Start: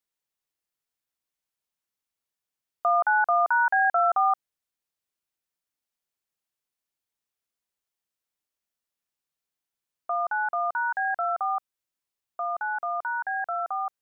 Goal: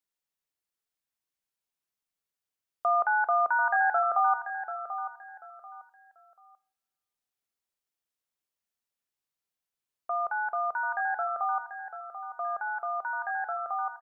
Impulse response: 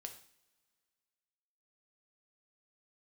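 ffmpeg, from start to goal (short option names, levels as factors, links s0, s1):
-filter_complex "[0:a]aecho=1:1:738|1476|2214:0.299|0.0776|0.0202,asplit=2[s0][s1];[1:a]atrim=start_sample=2205[s2];[s1][s2]afir=irnorm=-1:irlink=0,volume=0.944[s3];[s0][s3]amix=inputs=2:normalize=0,volume=0.473"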